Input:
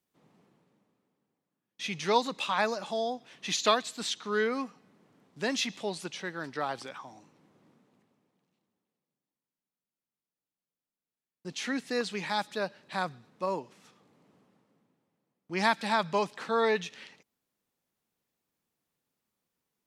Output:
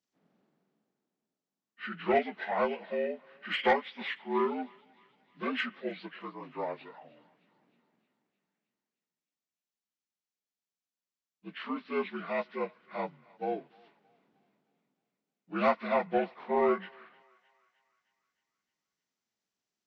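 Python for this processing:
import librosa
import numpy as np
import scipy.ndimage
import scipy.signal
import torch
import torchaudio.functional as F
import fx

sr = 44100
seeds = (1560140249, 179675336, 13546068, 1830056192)

p1 = fx.partial_stretch(x, sr, pct=77)
p2 = 10.0 ** (-17.5 / 20.0) * np.tanh(p1 / 10.0 ** (-17.5 / 20.0))
p3 = p2 + fx.echo_thinned(p2, sr, ms=309, feedback_pct=61, hz=770.0, wet_db=-18.5, dry=0)
p4 = fx.upward_expand(p3, sr, threshold_db=-41.0, expansion=1.5)
y = F.gain(torch.from_numpy(p4), 3.0).numpy()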